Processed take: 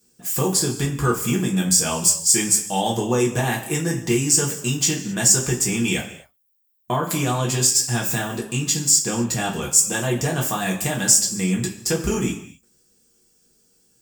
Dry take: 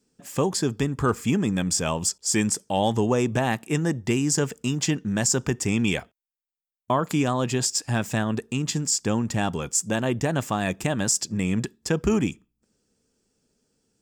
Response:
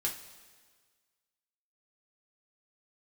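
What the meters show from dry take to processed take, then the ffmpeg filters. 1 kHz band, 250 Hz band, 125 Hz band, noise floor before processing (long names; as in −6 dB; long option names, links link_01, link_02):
+1.5 dB, +0.5 dB, +2.0 dB, below −85 dBFS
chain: -filter_complex "[0:a]aemphasis=mode=production:type=50fm,asplit=2[link_01][link_02];[link_02]acompressor=threshold=-28dB:ratio=6,volume=-1dB[link_03];[link_01][link_03]amix=inputs=2:normalize=0[link_04];[1:a]atrim=start_sample=2205,afade=type=out:start_time=0.33:duration=0.01,atrim=end_sample=14994[link_05];[link_04][link_05]afir=irnorm=-1:irlink=0,volume=-4dB"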